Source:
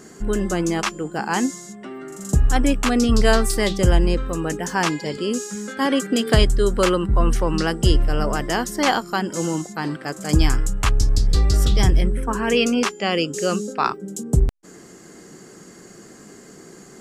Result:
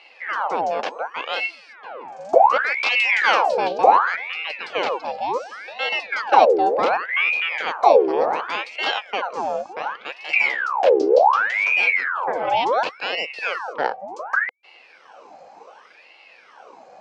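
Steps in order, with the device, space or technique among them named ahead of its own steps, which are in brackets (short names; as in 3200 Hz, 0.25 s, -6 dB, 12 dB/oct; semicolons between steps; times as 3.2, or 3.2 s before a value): voice changer toy (ring modulator with a swept carrier 1400 Hz, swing 75%, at 0.68 Hz; speaker cabinet 430–4100 Hz, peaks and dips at 500 Hz +8 dB, 800 Hz +5 dB, 1300 Hz -3 dB, 1900 Hz -9 dB, 3600 Hz -7 dB); 2.72–3.46 tilt +2.5 dB/oct; gain +1.5 dB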